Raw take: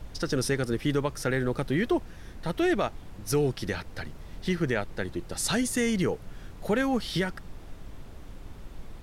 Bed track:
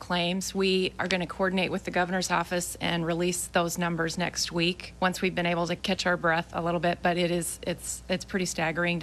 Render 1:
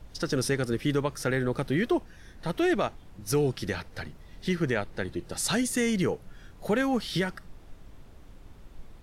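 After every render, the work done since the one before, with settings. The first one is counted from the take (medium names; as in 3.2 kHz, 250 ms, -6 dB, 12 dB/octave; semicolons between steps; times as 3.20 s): noise print and reduce 6 dB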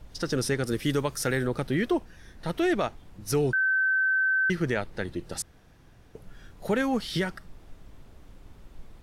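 0.67–1.47 s: treble shelf 4.8 kHz +9 dB; 3.53–4.50 s: bleep 1.54 kHz -21 dBFS; 5.42–6.15 s: room tone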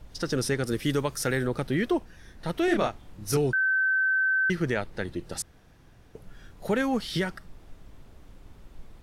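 2.65–3.37 s: doubling 29 ms -3.5 dB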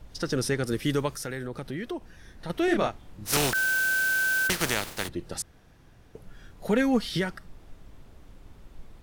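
1.13–2.50 s: compression 2:1, threshold -36 dBFS; 3.25–5.07 s: spectral contrast reduction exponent 0.36; 6.69–7.09 s: comb 4.2 ms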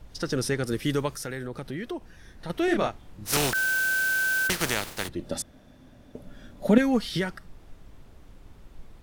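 5.19–6.78 s: small resonant body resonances 250/580/3500 Hz, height 13 dB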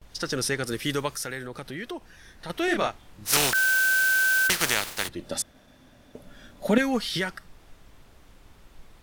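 gate with hold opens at -44 dBFS; tilt shelf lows -4.5 dB, about 640 Hz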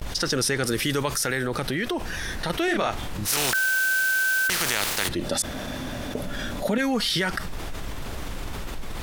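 peak limiter -16 dBFS, peak gain reduction 10.5 dB; level flattener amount 70%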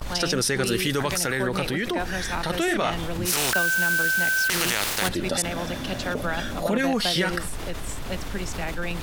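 add bed track -4.5 dB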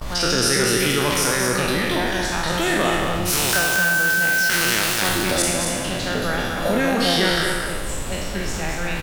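spectral sustain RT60 1.28 s; delay 228 ms -5 dB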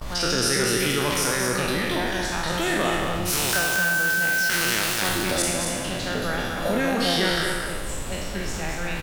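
trim -3.5 dB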